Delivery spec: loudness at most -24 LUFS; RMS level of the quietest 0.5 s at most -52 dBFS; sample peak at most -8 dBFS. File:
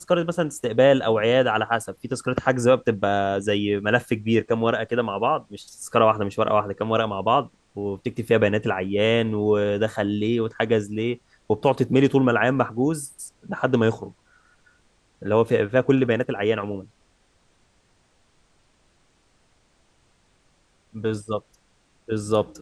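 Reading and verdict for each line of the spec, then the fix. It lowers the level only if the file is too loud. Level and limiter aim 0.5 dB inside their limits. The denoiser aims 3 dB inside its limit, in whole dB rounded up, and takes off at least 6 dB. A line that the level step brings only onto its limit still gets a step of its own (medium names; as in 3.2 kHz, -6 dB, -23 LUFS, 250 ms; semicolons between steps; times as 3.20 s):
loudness -22.5 LUFS: fail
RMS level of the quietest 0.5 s -63 dBFS: pass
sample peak -3.0 dBFS: fail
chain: trim -2 dB; peak limiter -8.5 dBFS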